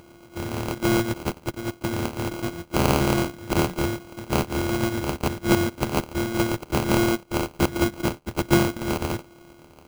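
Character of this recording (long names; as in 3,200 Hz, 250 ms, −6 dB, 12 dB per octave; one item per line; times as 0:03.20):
a buzz of ramps at a fixed pitch in blocks of 128 samples
phaser sweep stages 2, 1.3 Hz, lowest notch 520–1,200 Hz
aliases and images of a low sample rate 1,800 Hz, jitter 0%
Ogg Vorbis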